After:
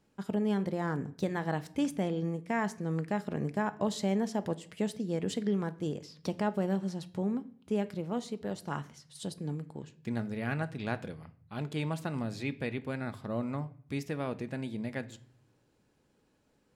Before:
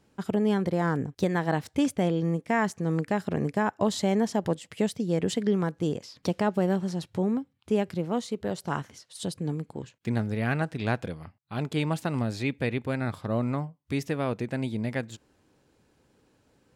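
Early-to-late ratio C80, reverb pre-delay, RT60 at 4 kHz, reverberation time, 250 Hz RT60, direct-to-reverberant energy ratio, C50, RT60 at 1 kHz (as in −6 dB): 22.5 dB, 4 ms, 0.45 s, 0.55 s, 0.85 s, 11.0 dB, 18.5 dB, 0.50 s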